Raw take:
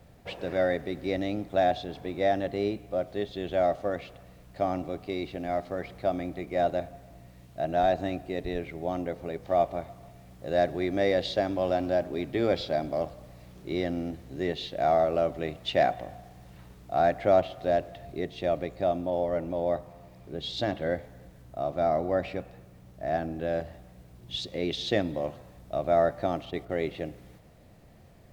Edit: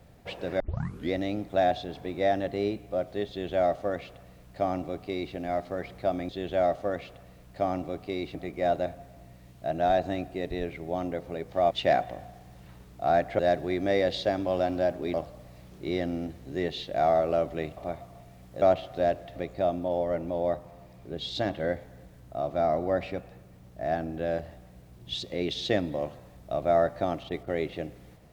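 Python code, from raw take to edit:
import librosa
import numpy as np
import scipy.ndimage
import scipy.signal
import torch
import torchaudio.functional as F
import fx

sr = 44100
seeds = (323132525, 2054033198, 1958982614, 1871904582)

y = fx.edit(x, sr, fx.tape_start(start_s=0.6, length_s=0.53),
    fx.duplicate(start_s=3.29, length_s=2.06, to_s=6.29),
    fx.swap(start_s=9.65, length_s=0.85, other_s=15.61, other_length_s=1.68),
    fx.cut(start_s=12.25, length_s=0.73),
    fx.cut(start_s=18.03, length_s=0.55), tone=tone)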